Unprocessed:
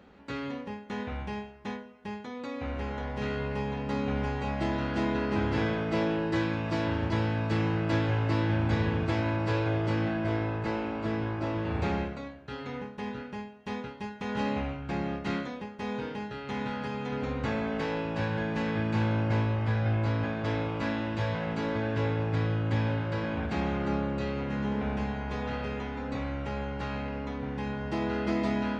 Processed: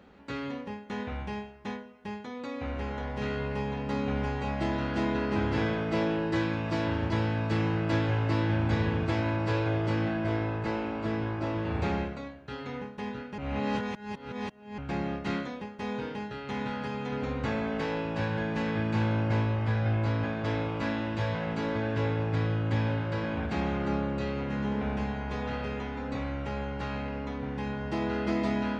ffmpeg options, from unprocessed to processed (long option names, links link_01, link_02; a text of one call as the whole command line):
ffmpeg -i in.wav -filter_complex "[0:a]asplit=3[link_01][link_02][link_03];[link_01]atrim=end=13.382[link_04];[link_02]atrim=start=13.378:end=14.782,asetpts=PTS-STARTPTS,areverse[link_05];[link_03]atrim=start=14.778[link_06];[link_04][link_05]acrossfade=duration=0.004:curve1=hsin:curve2=hsin[link_07];[link_07][link_06]acrossfade=duration=0.004:curve1=hsin:curve2=hsin" out.wav